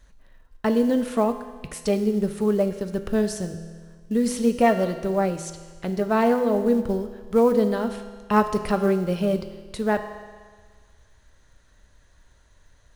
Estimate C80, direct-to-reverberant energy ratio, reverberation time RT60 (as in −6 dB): 11.5 dB, 8.0 dB, 1.6 s